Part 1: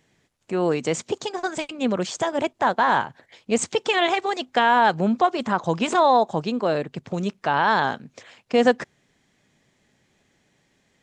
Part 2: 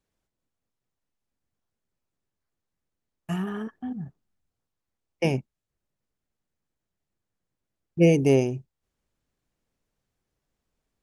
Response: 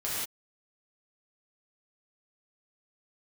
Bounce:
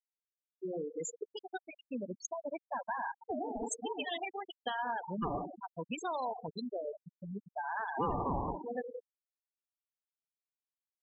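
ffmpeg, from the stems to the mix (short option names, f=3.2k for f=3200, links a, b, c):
-filter_complex "[0:a]equalizer=f=6.6k:t=o:w=2.3:g=14,adelay=100,volume=-15.5dB,asplit=2[a][b];[b]volume=-11.5dB[c];[1:a]aeval=exprs='val(0)*sin(2*PI*560*n/s+560*0.25/4.6*sin(2*PI*4.6*n/s))':c=same,volume=-4.5dB,asplit=3[d][e][f];[e]volume=-5.5dB[g];[f]apad=whole_len=490429[h];[a][h]sidechaincompress=threshold=-41dB:ratio=10:attack=30:release=527[i];[2:a]atrim=start_sample=2205[j];[c][g]amix=inputs=2:normalize=0[k];[k][j]afir=irnorm=-1:irlink=0[l];[i][d][l]amix=inputs=3:normalize=0,afftfilt=real='re*gte(hypot(re,im),0.0794)':imag='im*gte(hypot(re,im),0.0794)':win_size=1024:overlap=0.75,acompressor=threshold=-35dB:ratio=3"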